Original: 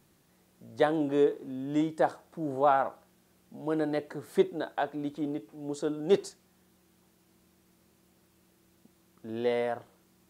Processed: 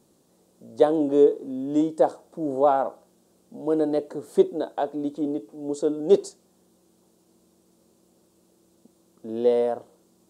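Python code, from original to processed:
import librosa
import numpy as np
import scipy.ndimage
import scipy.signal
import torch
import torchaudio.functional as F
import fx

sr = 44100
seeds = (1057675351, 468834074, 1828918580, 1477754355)

y = fx.graphic_eq(x, sr, hz=(250, 500, 1000, 2000, 4000, 8000), db=(8, 11, 4, -7, 4, 9))
y = y * 10.0 ** (-4.0 / 20.0)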